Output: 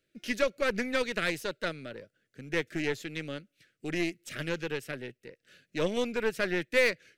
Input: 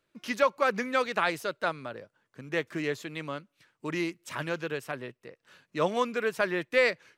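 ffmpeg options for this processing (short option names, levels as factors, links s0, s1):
-af "asuperstop=centerf=950:order=4:qfactor=0.98,aeval=exprs='0.224*(cos(1*acos(clip(val(0)/0.224,-1,1)))-cos(1*PI/2))+0.0158*(cos(8*acos(clip(val(0)/0.224,-1,1)))-cos(8*PI/2))':c=same"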